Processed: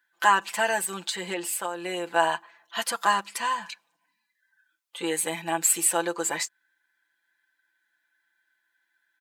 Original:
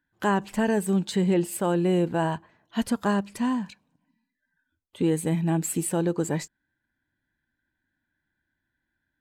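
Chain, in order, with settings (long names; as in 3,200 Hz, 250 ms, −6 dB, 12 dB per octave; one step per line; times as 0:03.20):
high-pass filter 970 Hz 12 dB per octave
comb filter 5.9 ms, depth 78%
0:00.84–0:02.16: downward compressor 6 to 1, threshold −34 dBFS, peak gain reduction 10 dB
level +7 dB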